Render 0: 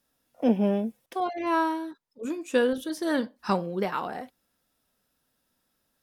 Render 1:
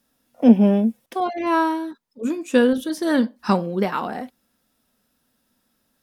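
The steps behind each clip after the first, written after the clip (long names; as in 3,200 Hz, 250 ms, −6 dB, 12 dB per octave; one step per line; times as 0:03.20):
parametric band 230 Hz +7.5 dB 0.43 octaves
level +5 dB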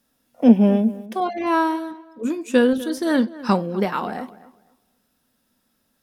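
feedback echo with a low-pass in the loop 250 ms, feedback 23%, low-pass 2,400 Hz, level −17.5 dB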